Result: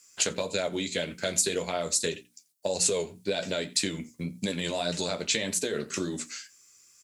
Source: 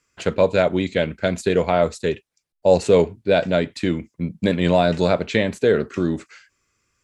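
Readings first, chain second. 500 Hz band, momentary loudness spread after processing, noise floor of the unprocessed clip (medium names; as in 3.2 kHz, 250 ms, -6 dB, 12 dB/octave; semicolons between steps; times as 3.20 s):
-13.5 dB, 10 LU, -78 dBFS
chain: tone controls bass +2 dB, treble +13 dB; hum notches 60/120/180/240/300 Hz; peak limiter -8.5 dBFS, peak gain reduction 6 dB; on a send: delay 86 ms -24 dB; on the sum: compression, threshold -23 dBFS, peak gain reduction 9.5 dB; treble shelf 2.8 kHz +10 dB; flange 1.8 Hz, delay 9.6 ms, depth 4.8 ms, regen -38%; Bessel high-pass 160 Hz, order 2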